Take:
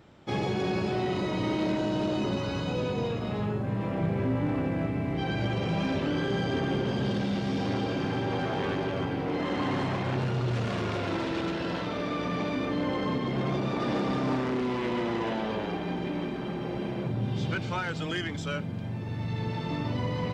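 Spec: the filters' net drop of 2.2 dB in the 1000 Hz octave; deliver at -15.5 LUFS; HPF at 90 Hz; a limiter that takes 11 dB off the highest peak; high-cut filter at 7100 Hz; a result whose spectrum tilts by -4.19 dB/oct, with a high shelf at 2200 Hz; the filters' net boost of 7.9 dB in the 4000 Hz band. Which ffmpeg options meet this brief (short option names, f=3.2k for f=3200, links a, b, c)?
-af "highpass=90,lowpass=7.1k,equalizer=f=1k:t=o:g=-4.5,highshelf=f=2.2k:g=6.5,equalizer=f=4k:t=o:g=5,volume=19.5dB,alimiter=limit=-7.5dB:level=0:latency=1"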